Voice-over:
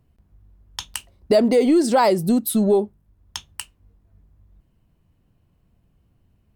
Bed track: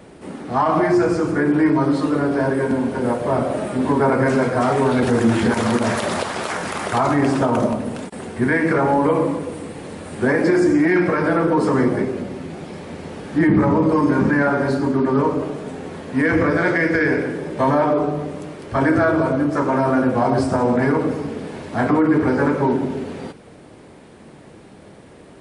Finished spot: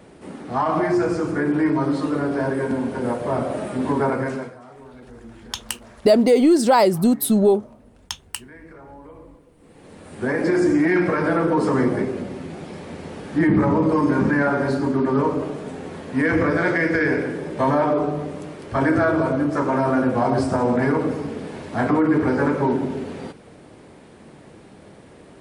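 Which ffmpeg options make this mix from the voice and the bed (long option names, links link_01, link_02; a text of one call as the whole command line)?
ffmpeg -i stem1.wav -i stem2.wav -filter_complex "[0:a]adelay=4750,volume=1.5dB[link_01];[1:a]volume=20.5dB,afade=type=out:start_time=4.02:duration=0.56:silence=0.0749894,afade=type=in:start_time=9.57:duration=1.1:silence=0.0630957[link_02];[link_01][link_02]amix=inputs=2:normalize=0" out.wav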